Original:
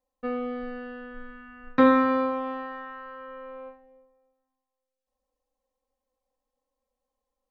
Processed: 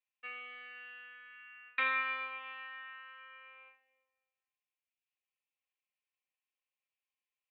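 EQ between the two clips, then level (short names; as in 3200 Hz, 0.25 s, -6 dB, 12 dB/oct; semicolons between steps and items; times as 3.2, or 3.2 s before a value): resonant high-pass 2500 Hz, resonance Q 5; air absorption 490 m; high shelf 3900 Hz +5.5 dB; 0.0 dB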